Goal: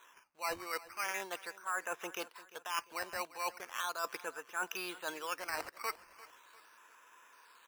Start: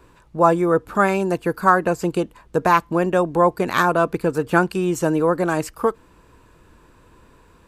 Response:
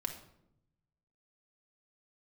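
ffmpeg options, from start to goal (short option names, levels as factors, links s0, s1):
-af "asuperpass=centerf=2500:order=4:qfactor=0.55,aresample=8000,aresample=44100,areverse,acompressor=threshold=0.0178:ratio=6,areverse,acrusher=samples=9:mix=1:aa=0.000001:lfo=1:lforange=9:lforate=0.39,aecho=1:1:347|694|1041:0.119|0.0499|0.021,volume=0.891"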